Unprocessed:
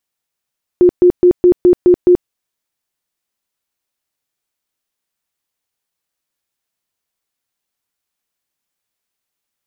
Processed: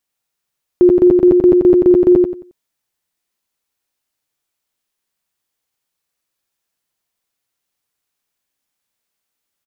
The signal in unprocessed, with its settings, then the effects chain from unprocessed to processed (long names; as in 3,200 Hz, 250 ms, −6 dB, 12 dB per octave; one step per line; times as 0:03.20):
tone bursts 357 Hz, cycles 29, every 0.21 s, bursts 7, −4 dBFS
repeating echo 90 ms, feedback 27%, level −3 dB